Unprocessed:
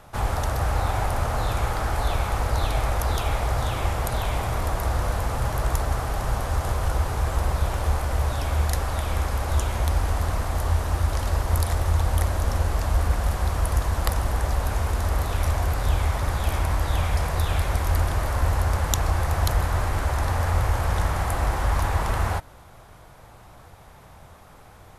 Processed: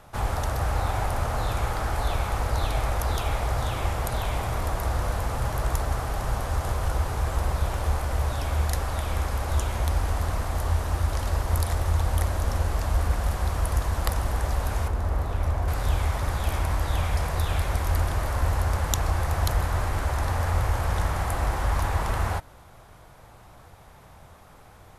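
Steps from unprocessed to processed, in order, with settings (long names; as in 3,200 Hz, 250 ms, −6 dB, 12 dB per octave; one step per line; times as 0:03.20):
0:14.88–0:15.68: high-shelf EQ 2,000 Hz −11 dB
level −2 dB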